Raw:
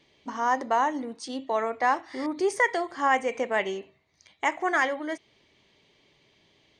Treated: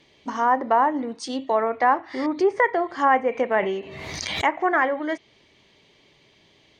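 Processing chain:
treble cut that deepens with the level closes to 1,600 Hz, closed at −22 dBFS
0:03.56–0:04.44: background raised ahead of every attack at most 25 dB per second
level +5.5 dB

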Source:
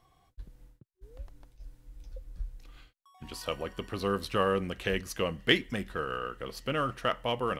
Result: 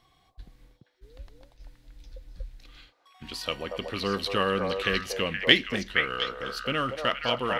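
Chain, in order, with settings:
graphic EQ with 10 bands 250 Hz +4 dB, 2,000 Hz +5 dB, 4,000 Hz +10 dB
echo through a band-pass that steps 236 ms, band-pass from 680 Hz, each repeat 1.4 octaves, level 0 dB
level −1 dB

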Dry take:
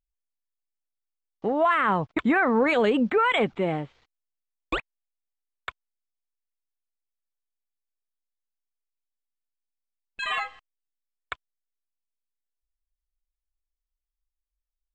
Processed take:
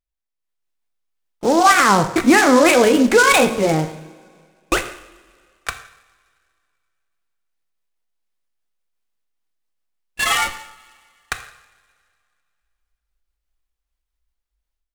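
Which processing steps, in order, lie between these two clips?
pitch shifter swept by a sawtooth +2.5 semitones, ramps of 898 ms
automatic gain control gain up to 11 dB
in parallel at −11 dB: comparator with hysteresis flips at −25 dBFS
on the sum: coupled-rooms reverb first 0.69 s, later 2.3 s, from −18 dB, DRR 7 dB
short delay modulated by noise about 5,100 Hz, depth 0.034 ms
level −1 dB

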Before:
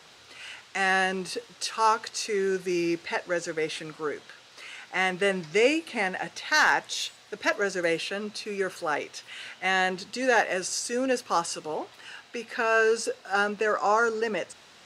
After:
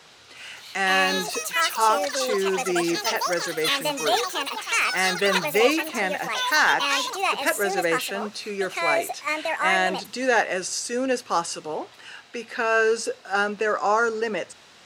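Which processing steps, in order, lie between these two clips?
delay with pitch and tempo change per echo 369 ms, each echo +7 semitones, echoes 3
level +2 dB

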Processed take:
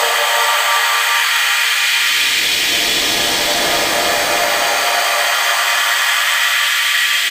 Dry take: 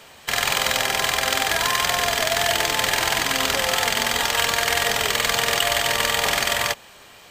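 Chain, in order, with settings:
auto-filter high-pass saw up 3 Hz 350–4,900 Hz
extreme stretch with random phases 15×, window 0.25 s, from 0:06.10
slap from a distant wall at 280 metres, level −23 dB
level +5 dB

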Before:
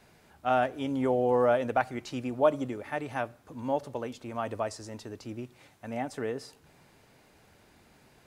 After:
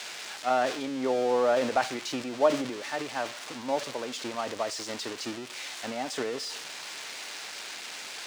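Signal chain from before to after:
spike at every zero crossing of −19.5 dBFS
high-pass filter 260 Hz 12 dB per octave
transient designer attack +2 dB, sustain +8 dB
high-frequency loss of the air 130 metres

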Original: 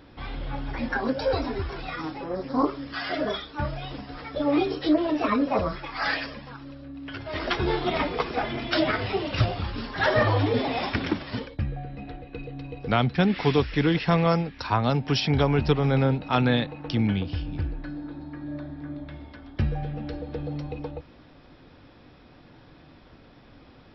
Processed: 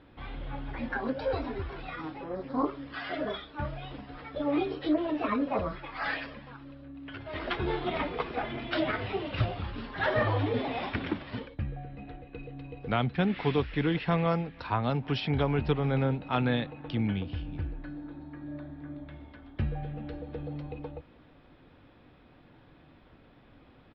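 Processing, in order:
low-pass filter 3,700 Hz 24 dB per octave
slap from a distant wall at 54 metres, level −29 dB
level −5.5 dB

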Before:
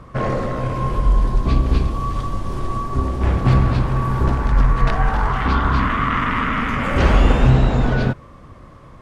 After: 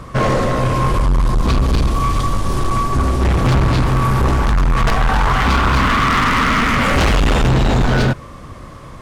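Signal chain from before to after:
high-shelf EQ 3,400 Hz +9.5 dB
gain into a clipping stage and back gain 18 dB
level +7 dB

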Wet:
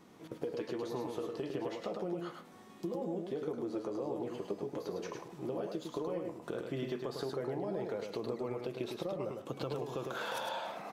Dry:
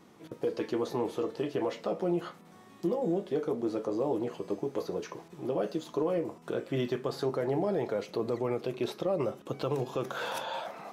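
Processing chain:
downward compressor, threshold −33 dBFS, peak gain reduction 8 dB
on a send: single-tap delay 105 ms −4.5 dB
on the sum: level −2 dB

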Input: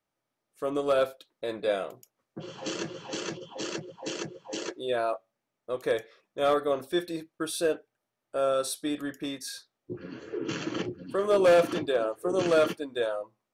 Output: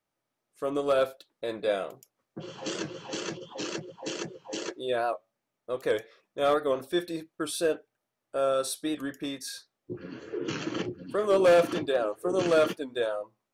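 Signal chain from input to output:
wow of a warped record 78 rpm, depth 100 cents

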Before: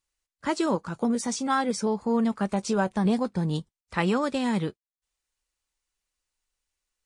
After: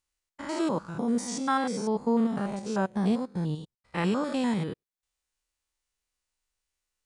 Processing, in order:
spectrum averaged block by block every 100 ms
0:02.59–0:03.98: expander for the loud parts 1.5 to 1, over −45 dBFS

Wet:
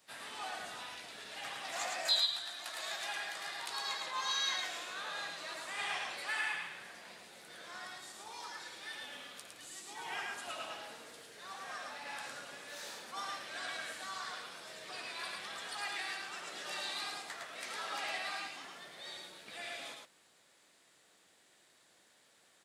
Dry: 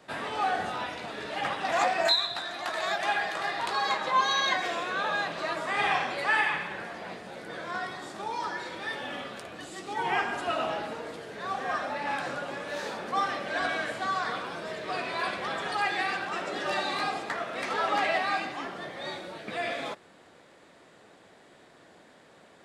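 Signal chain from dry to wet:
pitch-shifted copies added −3 semitones −11 dB, +3 semitones −14 dB
first-order pre-emphasis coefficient 0.9
single-tap delay 109 ms −3.5 dB
level −1 dB

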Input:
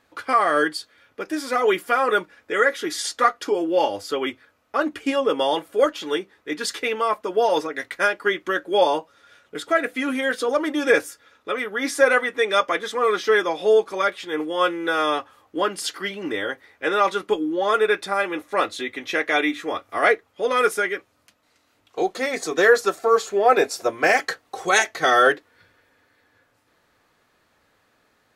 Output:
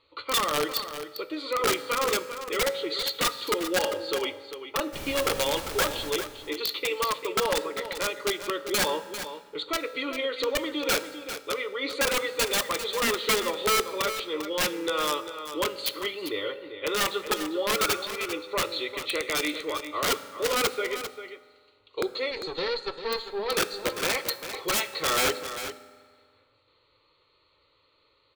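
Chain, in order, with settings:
high-shelf EQ 2,200 Hz −4.5 dB
phaser with its sweep stopped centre 1,100 Hz, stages 8
in parallel at −3 dB: downward compressor 10 to 1, threshold −30 dBFS, peak gain reduction 18 dB
0:22.31–0:23.53: on the sum: tube saturation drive 21 dB, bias 0.8
low-pass with resonance 4,300 Hz, resonance Q 14
0:04.92–0:06.09: background noise pink −33 dBFS
0:17.82–0:18.34: healed spectral selection 540–1,600 Hz
wrap-around overflow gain 13 dB
single-tap delay 397 ms −10.5 dB
on a send at −12.5 dB: convolution reverb RT60 1.8 s, pre-delay 3 ms
on the sum: level −6 dB

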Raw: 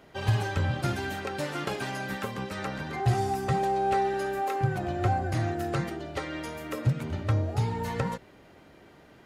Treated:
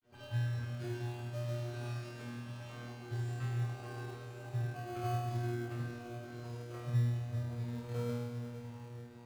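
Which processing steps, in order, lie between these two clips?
low-pass filter 9,500 Hz
on a send: feedback delay with all-pass diffusion 615 ms, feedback 56%, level −8 dB
on the sum: granular cloud, pitch spread up and down by 0 semitones
auto-filter notch saw up 6.5 Hz 370–5,500 Hz
tuned comb filter 120 Hz, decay 1.5 s, mix 100%
in parallel at −6 dB: decimation without filtering 24×
on the sum: level +5 dB

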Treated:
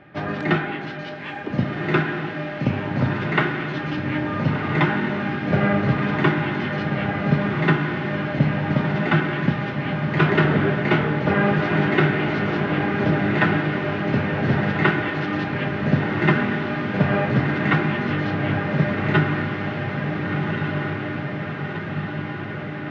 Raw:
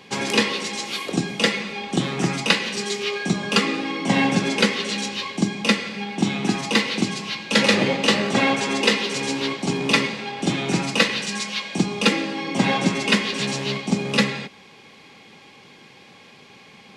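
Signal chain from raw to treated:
low-pass filter 2,300 Hz 12 dB per octave
on a send: feedback delay with all-pass diffusion 1,111 ms, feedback 68%, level −3.5 dB
on the sum: wrong playback speed 45 rpm record played at 33 rpm

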